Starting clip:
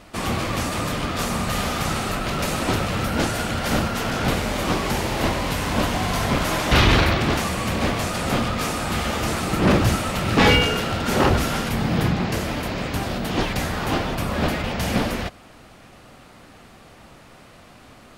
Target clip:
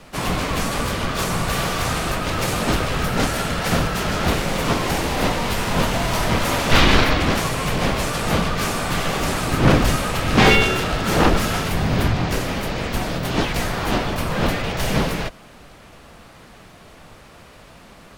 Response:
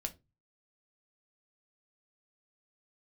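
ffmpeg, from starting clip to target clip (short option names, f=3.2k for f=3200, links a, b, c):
-filter_complex "[0:a]afreqshift=-58,asplit=2[a][b];[b]asetrate=55563,aresample=44100,atempo=0.793701,volume=-7dB[c];[a][c]amix=inputs=2:normalize=0,volume=1.5dB"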